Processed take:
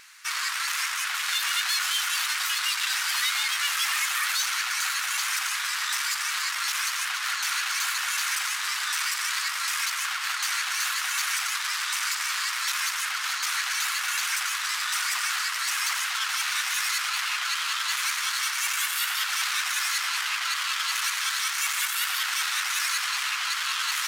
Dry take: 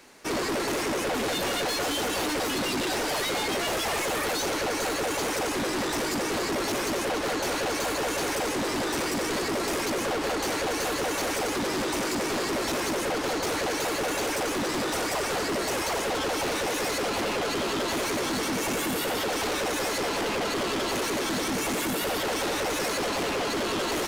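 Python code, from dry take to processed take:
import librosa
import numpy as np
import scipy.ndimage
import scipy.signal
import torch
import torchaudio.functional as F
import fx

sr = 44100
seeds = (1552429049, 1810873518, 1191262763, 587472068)

y = scipy.signal.sosfilt(scipy.signal.butter(6, 1200.0, 'highpass', fs=sr, output='sos'), x)
y = fx.vibrato(y, sr, rate_hz=9.4, depth_cents=28.0)
y = y * 10.0 ** (5.0 / 20.0)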